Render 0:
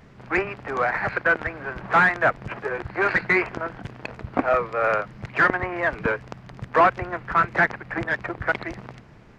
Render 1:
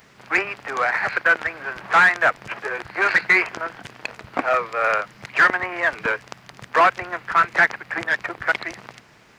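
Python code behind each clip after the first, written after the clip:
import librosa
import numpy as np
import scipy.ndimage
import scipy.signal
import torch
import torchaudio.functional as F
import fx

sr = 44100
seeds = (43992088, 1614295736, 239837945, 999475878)

y = fx.tilt_eq(x, sr, slope=3.5)
y = y * 10.0 ** (1.5 / 20.0)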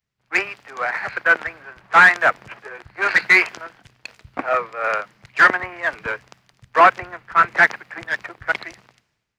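y = fx.band_widen(x, sr, depth_pct=100)
y = y * 10.0 ** (-1.0 / 20.0)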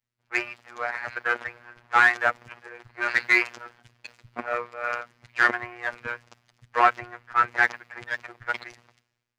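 y = fx.robotise(x, sr, hz=120.0)
y = y * 10.0 ** (-4.5 / 20.0)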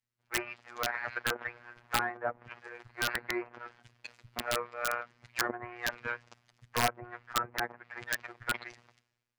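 y = fx.env_lowpass_down(x, sr, base_hz=700.0, full_db=-20.0)
y = (np.mod(10.0 ** (14.0 / 20.0) * y + 1.0, 2.0) - 1.0) / 10.0 ** (14.0 / 20.0)
y = y * 10.0 ** (-3.5 / 20.0)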